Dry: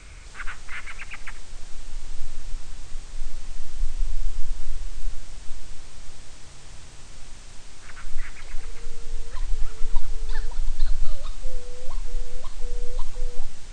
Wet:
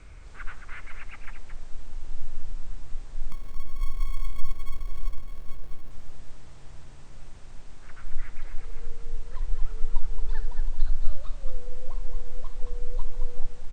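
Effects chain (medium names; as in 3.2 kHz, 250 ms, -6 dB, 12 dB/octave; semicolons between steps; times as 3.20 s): treble shelf 2.1 kHz -12 dB; 3.32–5.91 s: sample-rate reducer 1.1 kHz, jitter 0%; delay 222 ms -7.5 dB; trim -2.5 dB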